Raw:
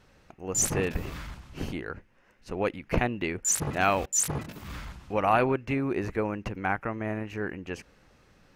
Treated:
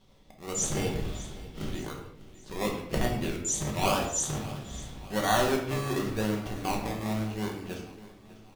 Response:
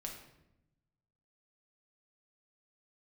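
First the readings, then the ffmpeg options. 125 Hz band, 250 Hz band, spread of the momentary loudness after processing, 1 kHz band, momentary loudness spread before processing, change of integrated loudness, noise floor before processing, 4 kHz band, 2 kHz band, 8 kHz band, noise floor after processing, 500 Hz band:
+0.5 dB, 0.0 dB, 15 LU, -2.5 dB, 16 LU, -2.0 dB, -62 dBFS, +6.0 dB, -3.5 dB, -3.5 dB, -54 dBFS, -1.5 dB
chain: -filter_complex "[0:a]lowpass=8.7k,equalizer=f=3.4k:w=4.3:g=12,acrossover=split=2900[a][b];[a]acrusher=samples=24:mix=1:aa=0.000001:lfo=1:lforange=14.4:lforate=0.9[c];[c][b]amix=inputs=2:normalize=0,aecho=1:1:598|1196|1794|2392:0.126|0.0617|0.0302|0.0148[d];[1:a]atrim=start_sample=2205,afade=t=out:st=0.31:d=0.01,atrim=end_sample=14112[e];[d][e]afir=irnorm=-1:irlink=0"

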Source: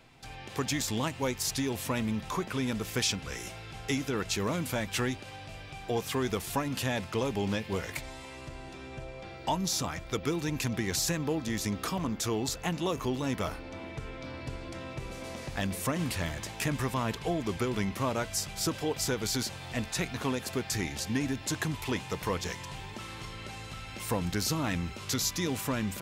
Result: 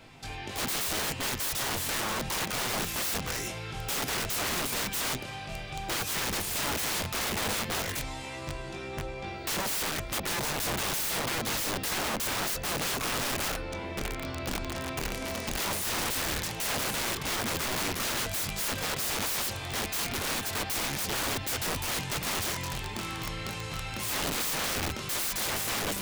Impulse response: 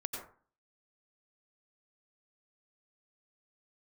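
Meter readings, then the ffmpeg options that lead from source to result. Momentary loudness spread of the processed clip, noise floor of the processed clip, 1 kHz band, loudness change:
7 LU, -39 dBFS, +2.5 dB, +2.5 dB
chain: -af "flanger=delay=20:depth=6:speed=0.1,aeval=exprs='(mod(56.2*val(0)+1,2)-1)/56.2':c=same,volume=9dB"

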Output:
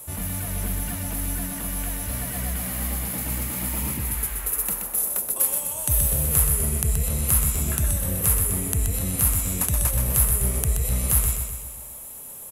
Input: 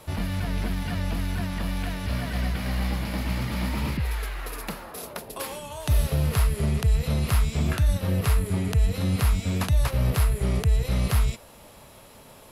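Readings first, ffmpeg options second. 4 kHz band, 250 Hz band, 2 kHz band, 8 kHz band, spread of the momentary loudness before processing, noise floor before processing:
-2.5 dB, -3.0 dB, -2.5 dB, +16.5 dB, 10 LU, -49 dBFS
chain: -af "aecho=1:1:126|252|378|504|630|756|882:0.531|0.292|0.161|0.0883|0.0486|0.0267|0.0147,aexciter=amount=13.2:drive=0.8:freq=6.8k,volume=-4dB"

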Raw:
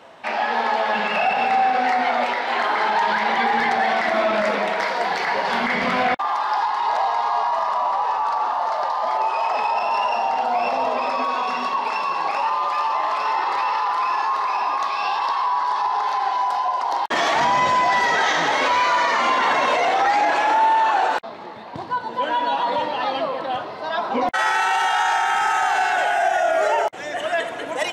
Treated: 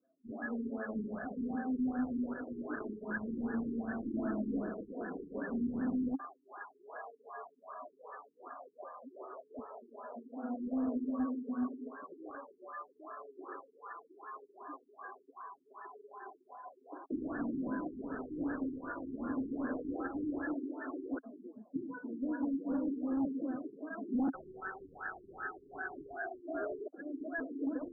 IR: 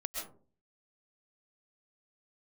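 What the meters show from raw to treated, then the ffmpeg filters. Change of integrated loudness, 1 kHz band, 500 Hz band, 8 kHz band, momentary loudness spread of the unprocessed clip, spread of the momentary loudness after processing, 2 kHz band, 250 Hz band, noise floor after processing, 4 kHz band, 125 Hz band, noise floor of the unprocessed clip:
-19.0 dB, -30.5 dB, -19.5 dB, under -40 dB, 6 LU, 16 LU, -24.0 dB, -1.0 dB, -69 dBFS, under -40 dB, n/a, -32 dBFS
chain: -filter_complex "[0:a]afftdn=nr=26:nf=-30,asplit=3[a][b][c];[a]bandpass=f=270:t=q:w=8,volume=0dB[d];[b]bandpass=f=2.29k:t=q:w=8,volume=-6dB[e];[c]bandpass=f=3.01k:t=q:w=8,volume=-9dB[f];[d][e][f]amix=inputs=3:normalize=0,alimiter=level_in=6dB:limit=-24dB:level=0:latency=1:release=16,volume=-6dB,asoftclip=type=hard:threshold=-38dB,afftfilt=real='re*lt(b*sr/1024,420*pow(1800/420,0.5+0.5*sin(2*PI*2.6*pts/sr)))':imag='im*lt(b*sr/1024,420*pow(1800/420,0.5+0.5*sin(2*PI*2.6*pts/sr)))':win_size=1024:overlap=0.75,volume=9dB"

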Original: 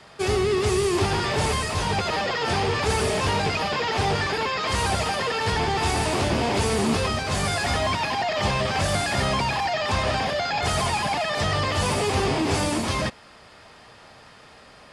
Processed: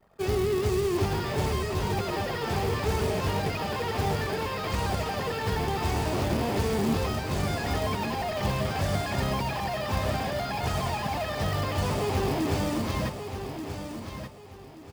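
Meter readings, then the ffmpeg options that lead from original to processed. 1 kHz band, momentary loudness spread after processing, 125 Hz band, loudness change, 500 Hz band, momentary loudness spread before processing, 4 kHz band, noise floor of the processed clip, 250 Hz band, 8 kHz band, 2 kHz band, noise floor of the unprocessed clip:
-6.0 dB, 8 LU, -1.5 dB, -5.0 dB, -4.0 dB, 2 LU, -9.0 dB, -45 dBFS, -2.5 dB, -9.0 dB, -8.5 dB, -49 dBFS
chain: -filter_complex "[0:a]anlmdn=0.0631,lowpass=8k,tiltshelf=f=710:g=4,acrusher=bits=4:mode=log:mix=0:aa=0.000001,asplit=2[a][b];[b]aecho=0:1:1181|2362|3543:0.376|0.105|0.0295[c];[a][c]amix=inputs=2:normalize=0,volume=-6dB"

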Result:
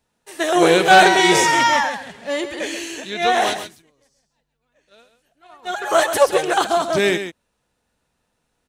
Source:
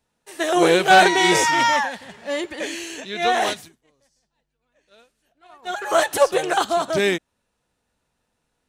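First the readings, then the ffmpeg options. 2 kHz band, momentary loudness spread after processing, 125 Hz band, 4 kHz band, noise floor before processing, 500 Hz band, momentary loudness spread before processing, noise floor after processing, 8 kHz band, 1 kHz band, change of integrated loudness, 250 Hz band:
+2.5 dB, 17 LU, +2.5 dB, +2.5 dB, -75 dBFS, +2.5 dB, 17 LU, -73 dBFS, +2.5 dB, +2.5 dB, +2.5 dB, +2.5 dB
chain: -af "aecho=1:1:134:0.316,volume=2dB"

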